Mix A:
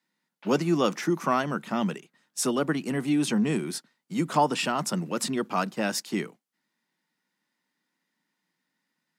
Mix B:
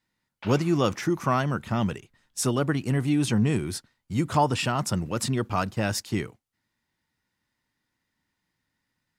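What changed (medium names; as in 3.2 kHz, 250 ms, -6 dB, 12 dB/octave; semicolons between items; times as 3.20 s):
first sound +9.0 dB; second sound -3.5 dB; master: remove steep high-pass 160 Hz 48 dB/octave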